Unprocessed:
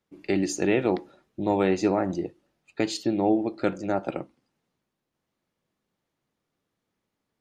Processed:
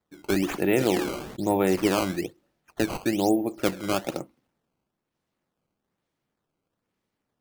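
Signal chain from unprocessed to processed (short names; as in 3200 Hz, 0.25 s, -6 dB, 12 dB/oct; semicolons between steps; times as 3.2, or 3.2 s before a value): decimation with a swept rate 14×, swing 160% 1.1 Hz; 0.73–1.76 sustainer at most 49 dB/s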